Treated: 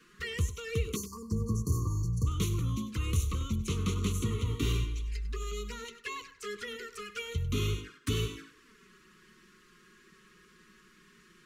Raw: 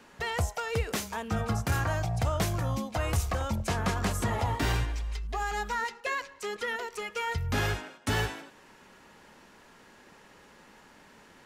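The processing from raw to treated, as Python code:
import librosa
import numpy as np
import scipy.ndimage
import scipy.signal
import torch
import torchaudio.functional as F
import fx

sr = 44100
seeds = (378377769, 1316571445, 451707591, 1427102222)

p1 = fx.spec_erase(x, sr, start_s=0.96, length_s=1.31, low_hz=1200.0, high_hz=4200.0)
p2 = fx.env_flanger(p1, sr, rest_ms=6.9, full_db=-29.0)
p3 = scipy.signal.sosfilt(scipy.signal.ellip(3, 1.0, 40, [450.0, 1100.0], 'bandstop', fs=sr, output='sos'), p2)
y = p3 + fx.echo_single(p3, sr, ms=98, db=-14.5, dry=0)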